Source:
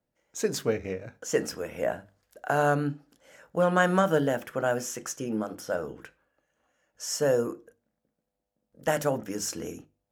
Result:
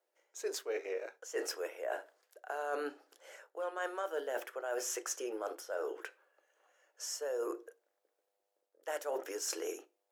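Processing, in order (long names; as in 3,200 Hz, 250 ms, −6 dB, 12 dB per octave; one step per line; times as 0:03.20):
elliptic high-pass filter 370 Hz, stop band 50 dB
reversed playback
downward compressor 10 to 1, threshold −37 dBFS, peak gain reduction 19.5 dB
reversed playback
level +2.5 dB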